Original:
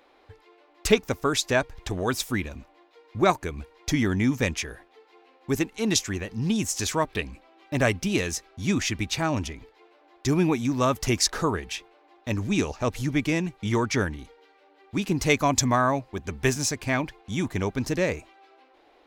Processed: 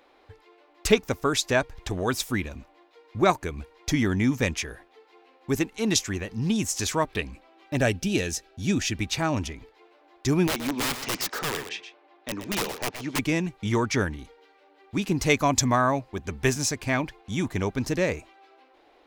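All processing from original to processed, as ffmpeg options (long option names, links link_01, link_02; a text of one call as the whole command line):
ffmpeg -i in.wav -filter_complex "[0:a]asettb=1/sr,asplit=3[link_01][link_02][link_03];[link_01]atrim=end=7.764[link_04];[link_02]atrim=start=7.76:end=8.98,asetpts=PTS-STARTPTS,afade=type=in:duration=0.004:curve=qsin,afade=type=out:start_time=1.216:duration=0.004:curve=qsin,equalizer=frequency=1100:width_type=o:width=0.34:gain=-13,bandreject=frequency=2100:width=8.5[link_05];[link_03]atrim=start=8.976[link_06];[link_04][link_05]acrossfade=duration=0.004:curve1=hsin:curve2=qsin[link_07];[link_07][link_06]acrossfade=duration=0.004:curve1=qsin:curve2=hsin,asettb=1/sr,asplit=3[link_08][link_09][link_10];[link_08]atrim=end=10.474[link_11];[link_09]atrim=start=10.47:end=13.19,asetpts=PTS-STARTPTS,afade=type=in:duration=0.004:curve=qsin,afade=type=out:start_time=2.716:duration=0.004:curve=qsin,highpass=270,lowpass=4300,aeval=exprs='(mod(11.9*val(0)+1,2)-1)/11.9':channel_layout=same,aecho=1:1:123:0.316,atrim=end_sample=119952[link_12];[link_10]atrim=start=13.186[link_13];[link_11][link_12]acrossfade=duration=0.004:curve1=hsin:curve2=qsin[link_14];[link_14][link_13]acrossfade=duration=0.004:curve1=qsin:curve2=hsin" out.wav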